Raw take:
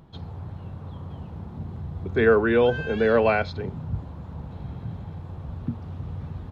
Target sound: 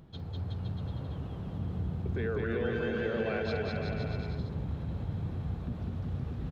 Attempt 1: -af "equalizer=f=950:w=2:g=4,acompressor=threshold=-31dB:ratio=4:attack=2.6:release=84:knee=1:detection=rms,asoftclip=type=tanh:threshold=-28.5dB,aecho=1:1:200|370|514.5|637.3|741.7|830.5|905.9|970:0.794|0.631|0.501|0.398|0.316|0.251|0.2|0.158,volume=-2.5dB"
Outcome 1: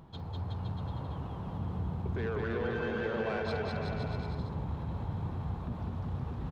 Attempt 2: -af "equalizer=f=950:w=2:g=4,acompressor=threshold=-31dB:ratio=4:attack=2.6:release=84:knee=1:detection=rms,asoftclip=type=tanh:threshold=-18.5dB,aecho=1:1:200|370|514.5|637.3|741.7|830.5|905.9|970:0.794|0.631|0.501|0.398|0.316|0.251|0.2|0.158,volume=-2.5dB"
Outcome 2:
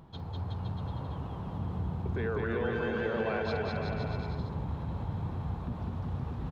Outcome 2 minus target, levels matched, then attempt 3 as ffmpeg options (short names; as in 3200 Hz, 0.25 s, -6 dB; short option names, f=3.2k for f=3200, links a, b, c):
1000 Hz band +5.5 dB
-af "equalizer=f=950:w=2:g=-7,acompressor=threshold=-31dB:ratio=4:attack=2.6:release=84:knee=1:detection=rms,asoftclip=type=tanh:threshold=-18.5dB,aecho=1:1:200|370|514.5|637.3|741.7|830.5|905.9|970:0.794|0.631|0.501|0.398|0.316|0.251|0.2|0.158,volume=-2.5dB"